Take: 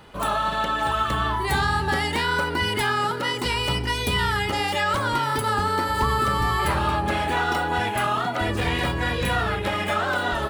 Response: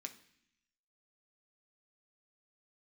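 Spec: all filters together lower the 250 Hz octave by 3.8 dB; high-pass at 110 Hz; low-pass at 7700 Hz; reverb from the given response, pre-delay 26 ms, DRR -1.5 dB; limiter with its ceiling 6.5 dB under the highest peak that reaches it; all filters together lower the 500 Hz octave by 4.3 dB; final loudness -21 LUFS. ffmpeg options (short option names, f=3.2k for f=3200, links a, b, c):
-filter_complex "[0:a]highpass=110,lowpass=7.7k,equalizer=f=250:t=o:g=-3.5,equalizer=f=500:t=o:g=-4.5,alimiter=limit=-18.5dB:level=0:latency=1,asplit=2[a][b];[1:a]atrim=start_sample=2205,adelay=26[c];[b][c]afir=irnorm=-1:irlink=0,volume=5.5dB[d];[a][d]amix=inputs=2:normalize=0,volume=2dB"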